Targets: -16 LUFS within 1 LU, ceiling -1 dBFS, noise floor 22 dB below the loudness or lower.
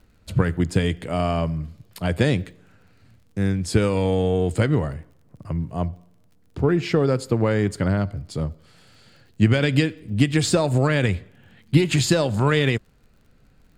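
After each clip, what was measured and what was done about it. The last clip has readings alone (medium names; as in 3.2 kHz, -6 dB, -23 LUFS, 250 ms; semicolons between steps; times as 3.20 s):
tick rate 42 per s; loudness -22.5 LUFS; peak level -3.5 dBFS; loudness target -16.0 LUFS
-> de-click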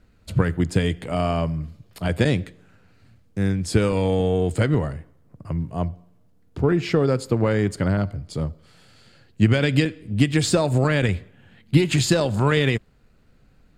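tick rate 0.073 per s; loudness -22.5 LUFS; peak level -3.5 dBFS; loudness target -16.0 LUFS
-> trim +6.5 dB; peak limiter -1 dBFS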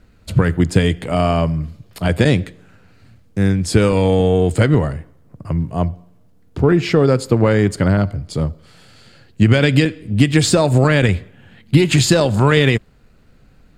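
loudness -16.0 LUFS; peak level -1.0 dBFS; noise floor -50 dBFS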